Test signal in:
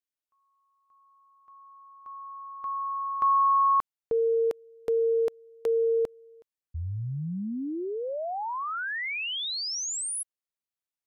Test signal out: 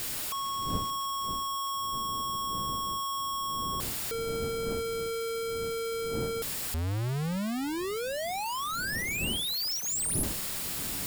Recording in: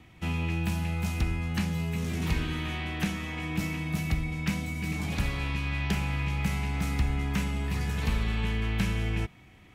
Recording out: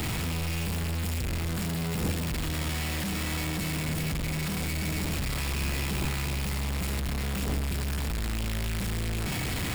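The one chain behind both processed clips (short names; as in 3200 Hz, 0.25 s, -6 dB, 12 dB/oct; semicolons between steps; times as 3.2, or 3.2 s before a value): infinite clipping; wind noise 330 Hz -42 dBFS; tone controls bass +4 dB, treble +3 dB; notch 6100 Hz, Q 9.7; gain -3.5 dB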